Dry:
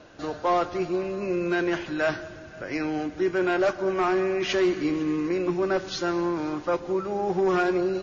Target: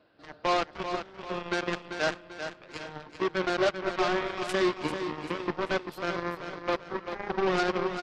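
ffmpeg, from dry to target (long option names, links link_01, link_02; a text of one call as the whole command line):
ffmpeg -i in.wav -af "highpass=frequency=110:poles=1,aresample=11025,volume=18.5dB,asoftclip=hard,volume=-18.5dB,aresample=44100,aeval=exprs='0.141*(cos(1*acos(clip(val(0)/0.141,-1,1)))-cos(1*PI/2))+0.0562*(cos(3*acos(clip(val(0)/0.141,-1,1)))-cos(3*PI/2))':channel_layout=same,aecho=1:1:391|782|1173|1564|1955:0.376|0.158|0.0663|0.0278|0.0117" out.wav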